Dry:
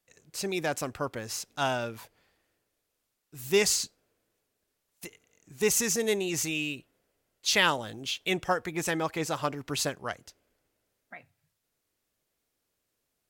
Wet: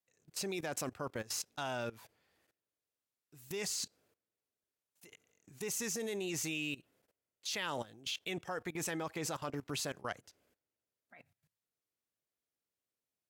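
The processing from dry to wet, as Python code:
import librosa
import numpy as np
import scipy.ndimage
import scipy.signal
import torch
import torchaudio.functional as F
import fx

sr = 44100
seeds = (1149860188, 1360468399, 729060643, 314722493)

y = scipy.signal.sosfilt(scipy.signal.butter(2, 73.0, 'highpass', fs=sr, output='sos'), x)
y = fx.level_steps(y, sr, step_db=19)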